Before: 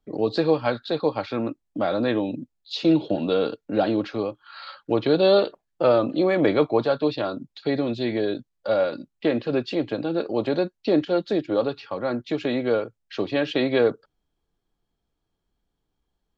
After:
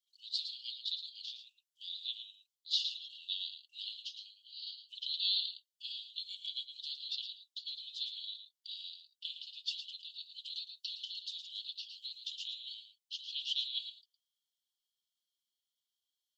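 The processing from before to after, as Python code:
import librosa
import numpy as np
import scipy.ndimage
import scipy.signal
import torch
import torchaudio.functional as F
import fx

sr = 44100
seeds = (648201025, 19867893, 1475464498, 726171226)

y = scipy.signal.sosfilt(scipy.signal.cheby1(8, 1.0, 2900.0, 'highpass', fs=sr, output='sos'), x)
y = y + 10.0 ** (-9.5 / 20.0) * np.pad(y, (int(111 * sr / 1000.0), 0))[:len(y)]
y = fx.band_squash(y, sr, depth_pct=100, at=(10.53, 12.74))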